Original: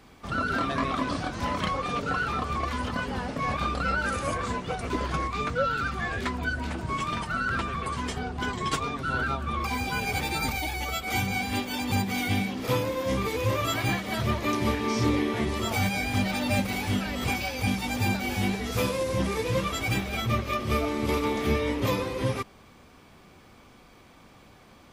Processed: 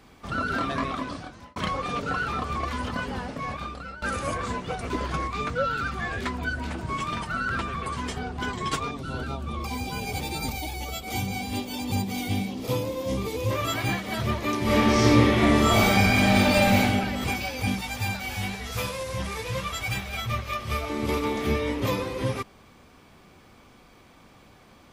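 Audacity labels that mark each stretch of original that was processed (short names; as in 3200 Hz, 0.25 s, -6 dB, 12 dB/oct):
0.760000	1.560000	fade out
3.080000	4.020000	fade out, to -17.5 dB
8.910000	13.510000	bell 1600 Hz -11 dB 1.1 oct
14.650000	16.800000	reverb throw, RT60 1.3 s, DRR -8 dB
17.810000	20.900000	bell 300 Hz -12.5 dB 1.4 oct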